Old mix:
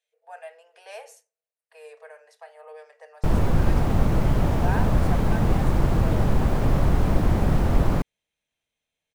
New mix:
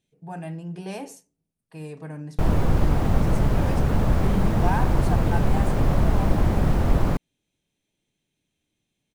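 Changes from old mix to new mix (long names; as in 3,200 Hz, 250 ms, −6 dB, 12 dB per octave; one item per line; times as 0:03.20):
speech: remove Chebyshev high-pass with heavy ripple 450 Hz, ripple 6 dB
background: entry −0.85 s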